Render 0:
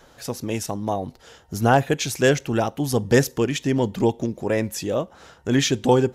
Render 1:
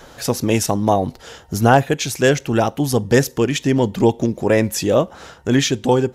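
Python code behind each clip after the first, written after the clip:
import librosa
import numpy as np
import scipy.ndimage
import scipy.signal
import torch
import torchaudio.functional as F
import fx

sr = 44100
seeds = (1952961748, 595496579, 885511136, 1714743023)

y = fx.rider(x, sr, range_db=5, speed_s=0.5)
y = y * 10.0 ** (4.5 / 20.0)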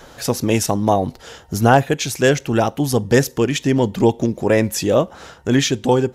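y = x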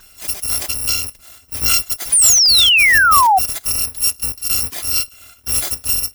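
y = fx.bit_reversed(x, sr, seeds[0], block=256)
y = fx.spec_paint(y, sr, seeds[1], shape='fall', start_s=2.12, length_s=1.27, low_hz=720.0, high_hz=10000.0, level_db=-8.0)
y = y * 10.0 ** (-3.0 / 20.0)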